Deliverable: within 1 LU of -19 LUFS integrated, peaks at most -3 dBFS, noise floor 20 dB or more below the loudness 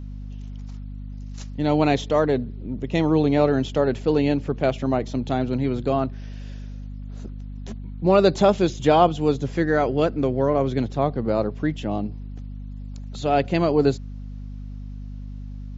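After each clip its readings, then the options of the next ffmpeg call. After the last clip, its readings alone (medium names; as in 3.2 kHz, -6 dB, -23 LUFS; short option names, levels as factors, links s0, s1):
hum 50 Hz; highest harmonic 250 Hz; hum level -31 dBFS; loudness -22.0 LUFS; peak level -2.5 dBFS; loudness target -19.0 LUFS
-> -af "bandreject=f=50:t=h:w=4,bandreject=f=100:t=h:w=4,bandreject=f=150:t=h:w=4,bandreject=f=200:t=h:w=4,bandreject=f=250:t=h:w=4"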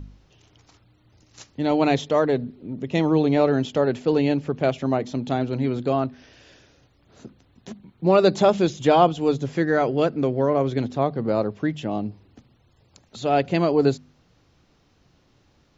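hum not found; loudness -22.0 LUFS; peak level -3.0 dBFS; loudness target -19.0 LUFS
-> -af "volume=1.41,alimiter=limit=0.708:level=0:latency=1"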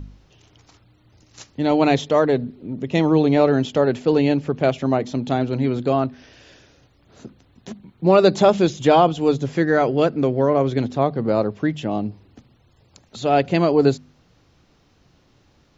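loudness -19.0 LUFS; peak level -3.0 dBFS; noise floor -58 dBFS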